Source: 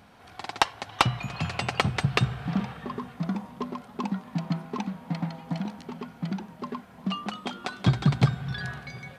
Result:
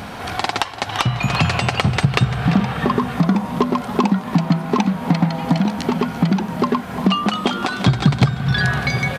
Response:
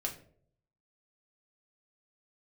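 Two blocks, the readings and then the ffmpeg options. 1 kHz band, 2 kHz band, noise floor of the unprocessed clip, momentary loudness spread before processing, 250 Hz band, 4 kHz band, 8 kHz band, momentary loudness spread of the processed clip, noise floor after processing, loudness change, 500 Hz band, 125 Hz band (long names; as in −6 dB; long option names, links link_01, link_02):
+10.5 dB, +11.0 dB, −50 dBFS, 12 LU, +13.0 dB, +9.5 dB, +9.0 dB, 4 LU, −31 dBFS, +10.5 dB, +13.0 dB, +10.0 dB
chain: -filter_complex "[0:a]acompressor=threshold=-39dB:ratio=3,asplit=2[link_01][link_02];[link_02]aecho=0:1:342:0.141[link_03];[link_01][link_03]amix=inputs=2:normalize=0,alimiter=level_in=24dB:limit=-1dB:release=50:level=0:latency=1,volume=-1dB"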